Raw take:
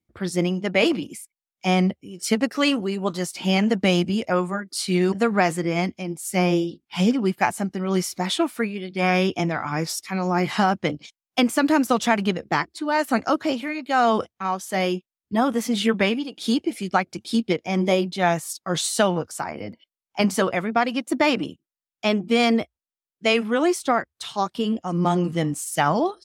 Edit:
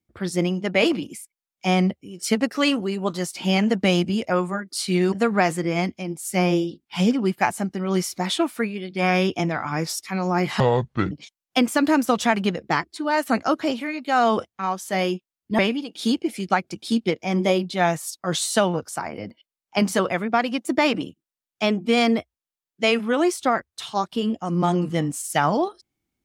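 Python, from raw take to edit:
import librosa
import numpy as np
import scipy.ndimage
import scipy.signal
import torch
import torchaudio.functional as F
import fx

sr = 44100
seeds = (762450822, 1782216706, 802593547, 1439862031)

y = fx.edit(x, sr, fx.speed_span(start_s=10.6, length_s=0.33, speed=0.64),
    fx.cut(start_s=15.4, length_s=0.61), tone=tone)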